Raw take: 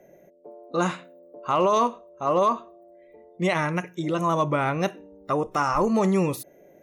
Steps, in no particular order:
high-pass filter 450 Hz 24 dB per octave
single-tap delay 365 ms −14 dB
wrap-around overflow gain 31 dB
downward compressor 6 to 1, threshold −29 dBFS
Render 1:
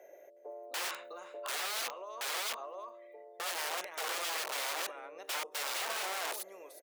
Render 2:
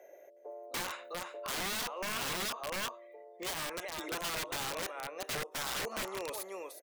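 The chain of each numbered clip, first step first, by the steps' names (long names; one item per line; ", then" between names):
downward compressor, then single-tap delay, then wrap-around overflow, then high-pass filter
single-tap delay, then downward compressor, then high-pass filter, then wrap-around overflow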